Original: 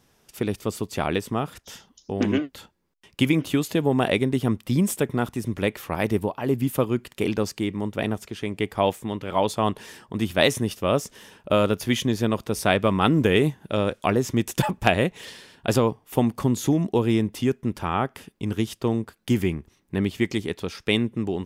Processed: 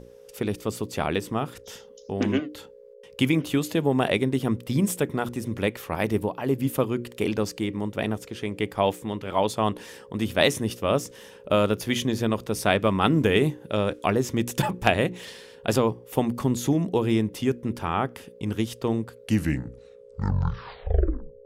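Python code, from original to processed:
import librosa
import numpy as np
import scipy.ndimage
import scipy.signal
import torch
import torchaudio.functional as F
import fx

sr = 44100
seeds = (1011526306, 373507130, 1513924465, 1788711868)

y = fx.tape_stop_end(x, sr, length_s=2.37)
y = fx.dmg_buzz(y, sr, base_hz=60.0, harmonics=9, level_db=-41.0, tilt_db=-2, odd_only=False)
y = fx.hum_notches(y, sr, base_hz=60, count=6)
y = y * 10.0 ** (-1.0 / 20.0)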